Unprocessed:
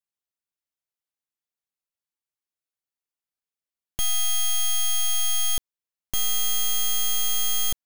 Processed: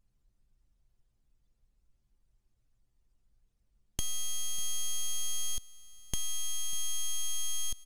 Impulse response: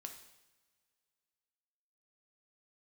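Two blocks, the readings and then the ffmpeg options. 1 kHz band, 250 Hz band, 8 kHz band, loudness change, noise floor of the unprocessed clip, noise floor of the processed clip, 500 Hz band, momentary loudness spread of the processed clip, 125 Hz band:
-15.5 dB, -6.0 dB, -8.5 dB, -11.5 dB, under -85 dBFS, -75 dBFS, -12.5 dB, 6 LU, -5.0 dB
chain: -af "aeval=exprs='val(0)+0.5*0.015*sgn(val(0))':c=same,anlmdn=15.8,lowshelf=f=150:g=11.5,acompressor=threshold=-25dB:ratio=6,crystalizer=i=3.5:c=0,lowpass=7.7k,aecho=1:1:596:0.106,volume=-6.5dB"

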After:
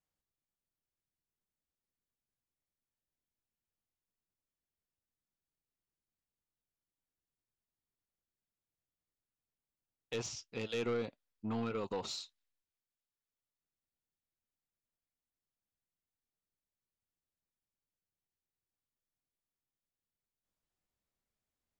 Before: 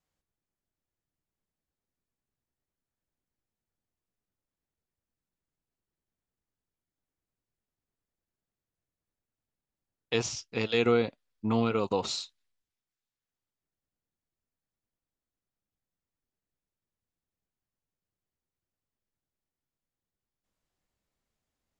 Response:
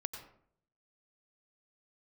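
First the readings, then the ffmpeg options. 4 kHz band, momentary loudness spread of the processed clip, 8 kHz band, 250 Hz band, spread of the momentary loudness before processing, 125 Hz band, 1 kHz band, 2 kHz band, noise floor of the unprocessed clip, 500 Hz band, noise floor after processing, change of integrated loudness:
-9.5 dB, 9 LU, -8.0 dB, -10.5 dB, 11 LU, -10.0 dB, -10.5 dB, -11.0 dB, under -85 dBFS, -10.0 dB, under -85 dBFS, -10.0 dB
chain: -af "asoftclip=type=tanh:threshold=-22dB,volume=-7.5dB"

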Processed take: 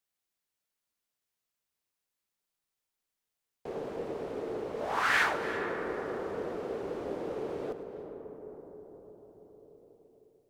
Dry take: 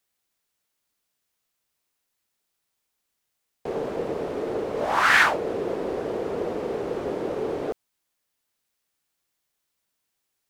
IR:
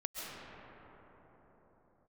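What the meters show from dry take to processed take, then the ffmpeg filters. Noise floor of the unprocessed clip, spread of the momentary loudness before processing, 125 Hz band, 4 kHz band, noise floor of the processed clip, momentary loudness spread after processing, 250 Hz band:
-79 dBFS, 13 LU, -8.0 dB, -8.5 dB, under -85 dBFS, 21 LU, -8.0 dB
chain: -filter_complex "[0:a]asplit=2[a][b];[1:a]atrim=start_sample=2205,asetrate=31752,aresample=44100,adelay=104[c];[b][c]afir=irnorm=-1:irlink=0,volume=-11.5dB[d];[a][d]amix=inputs=2:normalize=0,volume=-9dB"

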